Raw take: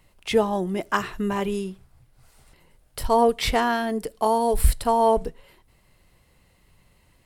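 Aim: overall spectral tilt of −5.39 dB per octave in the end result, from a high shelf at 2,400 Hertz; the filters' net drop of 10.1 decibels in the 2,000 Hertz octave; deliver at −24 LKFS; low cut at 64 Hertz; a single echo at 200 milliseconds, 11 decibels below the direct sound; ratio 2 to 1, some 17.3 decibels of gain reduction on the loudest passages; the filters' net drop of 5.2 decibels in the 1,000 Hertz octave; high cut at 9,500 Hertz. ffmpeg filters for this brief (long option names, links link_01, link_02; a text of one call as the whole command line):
ffmpeg -i in.wav -af "highpass=64,lowpass=9500,equalizer=frequency=1000:width_type=o:gain=-4,equalizer=frequency=2000:width_type=o:gain=-7.5,highshelf=frequency=2400:gain=-9,acompressor=threshold=-49dB:ratio=2,aecho=1:1:200:0.282,volume=17dB" out.wav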